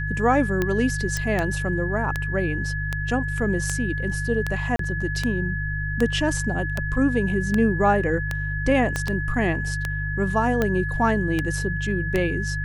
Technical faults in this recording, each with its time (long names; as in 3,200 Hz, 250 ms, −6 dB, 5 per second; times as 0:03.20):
mains hum 50 Hz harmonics 3 −28 dBFS
scratch tick 78 rpm −10 dBFS
whistle 1,700 Hz −29 dBFS
0:01.17: click
0:04.76–0:04.79: drop-out 33 ms
0:08.96: click −11 dBFS